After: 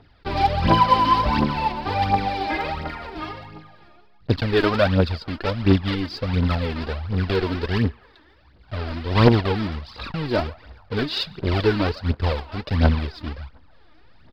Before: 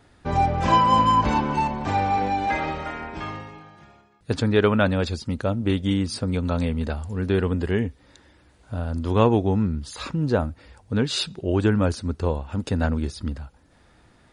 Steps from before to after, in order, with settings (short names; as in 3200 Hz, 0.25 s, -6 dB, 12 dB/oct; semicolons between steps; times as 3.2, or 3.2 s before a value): block floating point 3-bit; narrowing echo 0.141 s, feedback 65%, band-pass 1100 Hz, level -18.5 dB; in parallel at -12 dB: backlash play -21 dBFS; on the sum: downsampling 11025 Hz; phaser 1.4 Hz, delay 3.4 ms, feedback 64%; ending taper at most 580 dB/s; gain -3 dB